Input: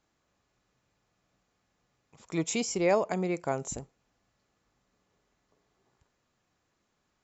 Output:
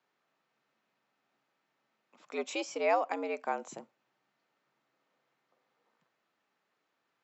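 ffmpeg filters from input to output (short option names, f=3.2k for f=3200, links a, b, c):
-af "lowshelf=f=330:g=-11,afreqshift=92,highpass=120,lowpass=3.6k"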